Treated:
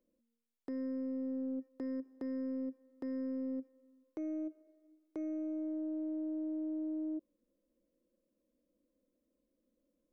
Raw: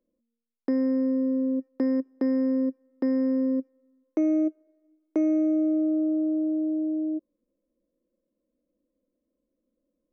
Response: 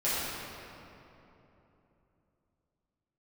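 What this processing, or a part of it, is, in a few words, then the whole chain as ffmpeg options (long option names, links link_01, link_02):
de-esser from a sidechain: -filter_complex "[0:a]asplit=2[link_01][link_02];[link_02]highpass=frequency=4500:poles=1,apad=whole_len=446712[link_03];[link_01][link_03]sidechaincompress=threshold=-56dB:ratio=8:attack=1:release=37,volume=-1.5dB"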